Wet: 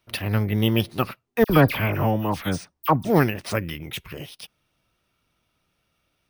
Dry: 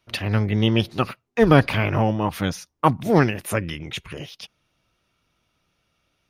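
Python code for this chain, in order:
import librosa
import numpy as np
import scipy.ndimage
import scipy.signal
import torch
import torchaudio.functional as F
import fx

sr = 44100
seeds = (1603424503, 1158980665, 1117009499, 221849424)

y = np.repeat(x[::3], 3)[:len(x)]
y = fx.dispersion(y, sr, late='lows', ms=55.0, hz=2200.0, at=(1.44, 3.05))
y = y * librosa.db_to_amplitude(-1.5)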